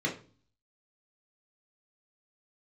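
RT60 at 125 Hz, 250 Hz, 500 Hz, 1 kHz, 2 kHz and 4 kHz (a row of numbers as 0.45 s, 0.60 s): 0.70 s, 0.55 s, 0.40 s, 0.35 s, 0.35 s, 0.35 s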